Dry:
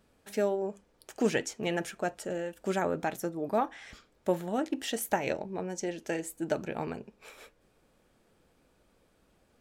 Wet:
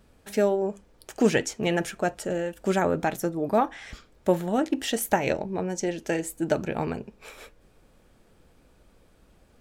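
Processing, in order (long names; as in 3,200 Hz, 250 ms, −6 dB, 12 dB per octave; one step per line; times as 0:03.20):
low-shelf EQ 100 Hz +9.5 dB
level +5.5 dB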